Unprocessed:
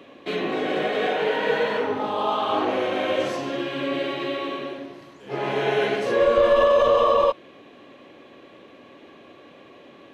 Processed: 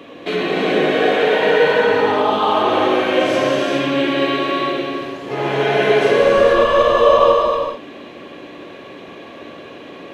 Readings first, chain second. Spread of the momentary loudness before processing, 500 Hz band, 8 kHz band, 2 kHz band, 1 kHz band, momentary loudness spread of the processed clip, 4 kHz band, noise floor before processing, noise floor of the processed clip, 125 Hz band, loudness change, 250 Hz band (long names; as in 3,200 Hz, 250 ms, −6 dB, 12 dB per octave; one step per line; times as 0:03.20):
13 LU, +7.0 dB, can't be measured, +9.0 dB, +7.5 dB, 23 LU, +8.5 dB, −49 dBFS, −37 dBFS, +9.0 dB, +7.0 dB, +9.0 dB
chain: in parallel at +2.5 dB: downward compressor, threshold −29 dBFS, peak gain reduction 14 dB
on the sum: reverb whose tail is shaped and stops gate 470 ms flat, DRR −3 dB